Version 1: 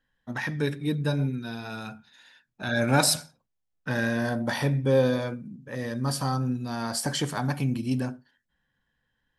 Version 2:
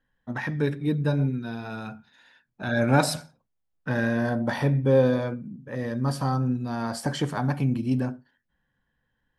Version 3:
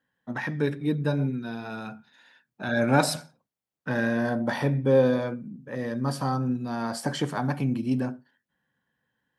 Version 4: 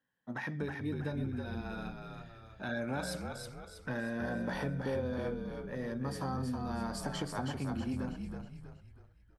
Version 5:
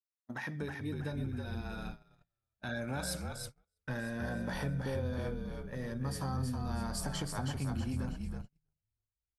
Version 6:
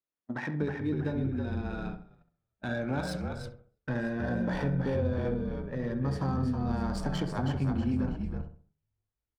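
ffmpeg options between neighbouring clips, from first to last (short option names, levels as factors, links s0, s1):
-af "highshelf=f=2800:g=-11.5,volume=1.33"
-af "highpass=140"
-filter_complex "[0:a]acompressor=threshold=0.0501:ratio=6,asplit=2[s0][s1];[s1]asplit=5[s2][s3][s4][s5][s6];[s2]adelay=321,afreqshift=-50,volume=0.562[s7];[s3]adelay=642,afreqshift=-100,volume=0.248[s8];[s4]adelay=963,afreqshift=-150,volume=0.108[s9];[s5]adelay=1284,afreqshift=-200,volume=0.0479[s10];[s6]adelay=1605,afreqshift=-250,volume=0.0211[s11];[s7][s8][s9][s10][s11]amix=inputs=5:normalize=0[s12];[s0][s12]amix=inputs=2:normalize=0,volume=0.447"
-af "aemphasis=mode=production:type=cd,agate=range=0.0112:threshold=0.00794:ratio=16:detection=peak,asubboost=boost=2.5:cutoff=160,volume=0.841"
-filter_complex "[0:a]equalizer=f=310:t=o:w=1.8:g=5.5,asplit=2[s0][s1];[s1]adelay=66,lowpass=f=1600:p=1,volume=0.398,asplit=2[s2][s3];[s3]adelay=66,lowpass=f=1600:p=1,volume=0.38,asplit=2[s4][s5];[s5]adelay=66,lowpass=f=1600:p=1,volume=0.38,asplit=2[s6][s7];[s7]adelay=66,lowpass=f=1600:p=1,volume=0.38[s8];[s0][s2][s4][s6][s8]amix=inputs=5:normalize=0,adynamicsmooth=sensitivity=7.5:basefreq=2900,volume=1.41"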